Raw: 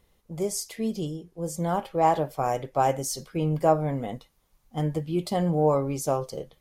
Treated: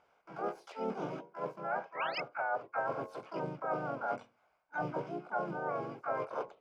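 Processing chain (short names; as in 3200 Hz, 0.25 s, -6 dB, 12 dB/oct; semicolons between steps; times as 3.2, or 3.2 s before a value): dynamic EQ 130 Hz, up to +3 dB, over -36 dBFS, Q 1.1; treble ducked by the level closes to 380 Hz, closed at -19.5 dBFS; painted sound rise, 1.97–2.2, 870–2700 Hz -23 dBFS; notches 60/120/180/240/300/360/420/480/540 Hz; in parallel at -11 dB: bit-crush 6-bit; on the sum: vowel filter a; reverse; compressor 8:1, threshold -46 dBFS, peak gain reduction 19.5 dB; reverse; harmoniser -3 st -4 dB, +3 st -2 dB, +12 st 0 dB; high shelf 4400 Hz -10 dB; gain +8.5 dB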